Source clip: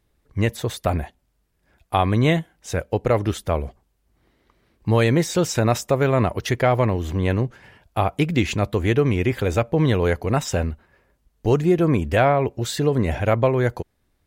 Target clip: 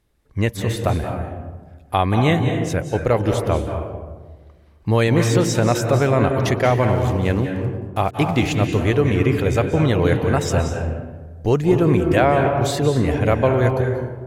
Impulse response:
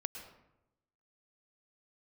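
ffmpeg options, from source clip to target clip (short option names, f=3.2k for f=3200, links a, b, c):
-filter_complex "[0:a]asettb=1/sr,asplit=3[a][b][c];[a]atrim=end=6.644[d];[b]atrim=start=6.64:end=8.81,asetpts=PTS-STARTPTS,afade=t=in:d=0.004:c=qsin,afade=t=out:st=2.166:d=0.004:c=qsin,aeval=exprs='val(0)*gte(abs(val(0)),0.0126)':c=same[e];[c]atrim=start=8.806[f];[d][e]acrossfade=d=0.004:c1=hsin:c2=qsin[g];[g][f]acrossfade=d=0.004:c1=qsin:c2=hsin[h];[1:a]atrim=start_sample=2205,asetrate=26019,aresample=44100[i];[h][i]afir=irnorm=-1:irlink=0"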